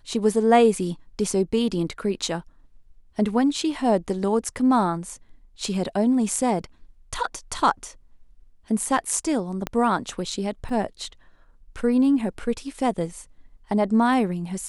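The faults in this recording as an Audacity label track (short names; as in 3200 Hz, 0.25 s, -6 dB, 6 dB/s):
9.670000	9.670000	pop -12 dBFS
10.690000	10.690000	gap 2.9 ms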